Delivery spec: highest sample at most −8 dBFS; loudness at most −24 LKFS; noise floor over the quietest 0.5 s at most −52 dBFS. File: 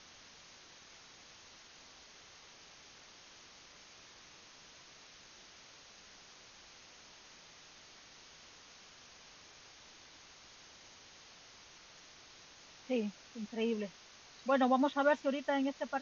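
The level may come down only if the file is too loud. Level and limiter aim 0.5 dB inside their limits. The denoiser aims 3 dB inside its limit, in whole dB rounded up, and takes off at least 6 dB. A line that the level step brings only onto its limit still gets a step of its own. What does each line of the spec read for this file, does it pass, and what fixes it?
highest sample −17.5 dBFS: in spec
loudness −34.0 LKFS: in spec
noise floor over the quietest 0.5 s −58 dBFS: in spec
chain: no processing needed

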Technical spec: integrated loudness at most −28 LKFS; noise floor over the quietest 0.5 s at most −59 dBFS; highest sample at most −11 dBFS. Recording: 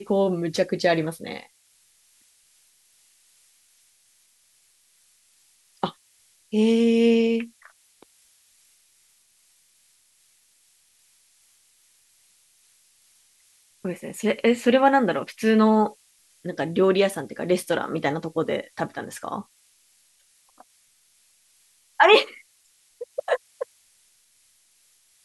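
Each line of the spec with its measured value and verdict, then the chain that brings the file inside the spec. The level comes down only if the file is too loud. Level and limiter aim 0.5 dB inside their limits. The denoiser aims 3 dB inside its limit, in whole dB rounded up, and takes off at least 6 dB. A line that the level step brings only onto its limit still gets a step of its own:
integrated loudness −22.5 LKFS: out of spec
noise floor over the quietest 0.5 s −62 dBFS: in spec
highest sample −4.0 dBFS: out of spec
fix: level −6 dB
brickwall limiter −11.5 dBFS

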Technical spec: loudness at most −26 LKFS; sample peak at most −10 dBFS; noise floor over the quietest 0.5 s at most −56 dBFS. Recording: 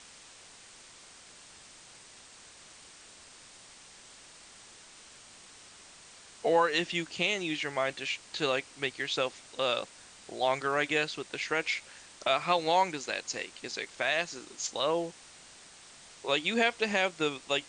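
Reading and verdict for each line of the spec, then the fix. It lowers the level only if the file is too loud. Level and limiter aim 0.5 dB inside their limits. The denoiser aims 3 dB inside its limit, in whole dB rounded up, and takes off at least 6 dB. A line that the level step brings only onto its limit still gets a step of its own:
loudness −30.5 LKFS: in spec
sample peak −12.0 dBFS: in spec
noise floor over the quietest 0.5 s −53 dBFS: out of spec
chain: broadband denoise 6 dB, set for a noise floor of −53 dBFS

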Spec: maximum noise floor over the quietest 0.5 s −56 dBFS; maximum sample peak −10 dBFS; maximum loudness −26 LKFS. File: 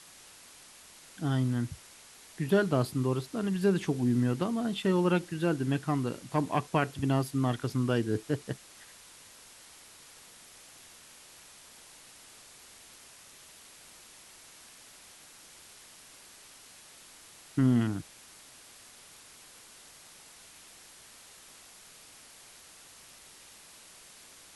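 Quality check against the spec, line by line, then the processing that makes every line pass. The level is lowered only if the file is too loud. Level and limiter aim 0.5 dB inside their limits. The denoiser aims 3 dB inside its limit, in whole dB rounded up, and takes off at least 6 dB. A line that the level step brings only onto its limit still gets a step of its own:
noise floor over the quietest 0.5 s −54 dBFS: out of spec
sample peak −12.5 dBFS: in spec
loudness −30.0 LKFS: in spec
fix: broadband denoise 6 dB, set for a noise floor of −54 dBFS

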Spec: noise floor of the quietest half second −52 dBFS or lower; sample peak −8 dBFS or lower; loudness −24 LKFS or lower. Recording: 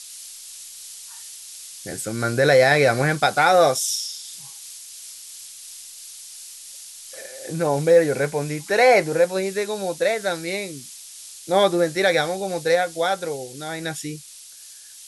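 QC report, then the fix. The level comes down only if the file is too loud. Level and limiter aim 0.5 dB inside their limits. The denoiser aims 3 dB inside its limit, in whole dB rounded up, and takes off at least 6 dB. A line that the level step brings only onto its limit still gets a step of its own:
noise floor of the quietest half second −43 dBFS: out of spec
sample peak −3.5 dBFS: out of spec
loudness −20.5 LKFS: out of spec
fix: broadband denoise 8 dB, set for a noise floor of −43 dBFS
level −4 dB
brickwall limiter −8.5 dBFS

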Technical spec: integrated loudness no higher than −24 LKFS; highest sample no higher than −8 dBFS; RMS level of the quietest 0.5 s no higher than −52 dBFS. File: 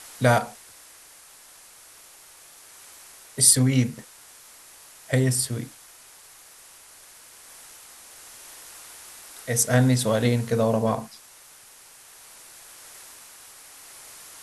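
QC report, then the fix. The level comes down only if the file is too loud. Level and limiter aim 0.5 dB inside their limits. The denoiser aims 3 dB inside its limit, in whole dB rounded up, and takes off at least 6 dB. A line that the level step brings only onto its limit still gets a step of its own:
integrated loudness −21.5 LKFS: out of spec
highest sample −2.5 dBFS: out of spec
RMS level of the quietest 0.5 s −50 dBFS: out of spec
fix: level −3 dB
brickwall limiter −8.5 dBFS

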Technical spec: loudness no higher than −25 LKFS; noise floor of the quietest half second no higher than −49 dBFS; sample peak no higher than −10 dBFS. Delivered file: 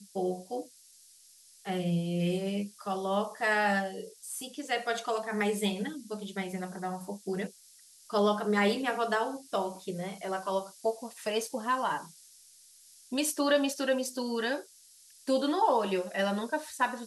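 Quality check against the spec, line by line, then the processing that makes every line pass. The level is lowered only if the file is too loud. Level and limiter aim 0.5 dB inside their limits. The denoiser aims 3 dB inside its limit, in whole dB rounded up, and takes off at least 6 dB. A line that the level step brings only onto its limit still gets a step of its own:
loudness −31.5 LKFS: in spec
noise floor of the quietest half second −58 dBFS: in spec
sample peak −15.0 dBFS: in spec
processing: no processing needed

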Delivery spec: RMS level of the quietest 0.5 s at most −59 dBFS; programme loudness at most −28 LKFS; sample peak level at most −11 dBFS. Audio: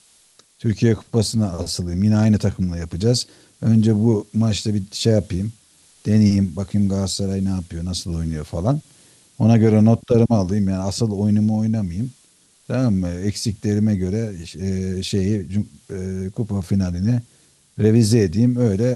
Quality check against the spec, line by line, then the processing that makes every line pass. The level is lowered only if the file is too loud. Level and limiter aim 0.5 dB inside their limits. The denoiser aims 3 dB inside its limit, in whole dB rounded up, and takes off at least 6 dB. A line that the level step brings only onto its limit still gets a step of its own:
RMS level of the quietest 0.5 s −56 dBFS: out of spec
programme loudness −20.0 LKFS: out of spec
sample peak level −3.5 dBFS: out of spec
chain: level −8.5 dB

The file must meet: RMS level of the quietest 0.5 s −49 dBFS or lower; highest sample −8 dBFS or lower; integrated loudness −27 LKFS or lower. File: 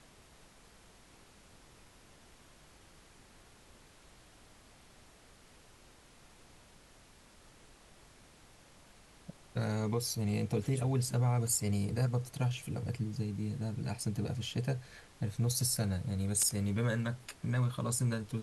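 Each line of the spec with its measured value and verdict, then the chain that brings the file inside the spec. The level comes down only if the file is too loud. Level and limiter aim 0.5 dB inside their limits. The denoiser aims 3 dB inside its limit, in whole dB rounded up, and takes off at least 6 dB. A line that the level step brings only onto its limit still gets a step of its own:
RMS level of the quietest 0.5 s −60 dBFS: in spec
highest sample −17.0 dBFS: in spec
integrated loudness −34.0 LKFS: in spec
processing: no processing needed

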